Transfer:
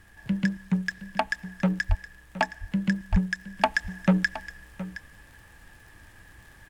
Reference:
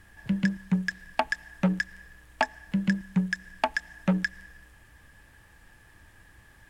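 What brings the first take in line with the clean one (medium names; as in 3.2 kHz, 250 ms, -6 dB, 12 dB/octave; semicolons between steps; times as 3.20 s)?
de-click; de-plosive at 1.88/3.11 s; inverse comb 718 ms -15 dB; trim 0 dB, from 3.57 s -3.5 dB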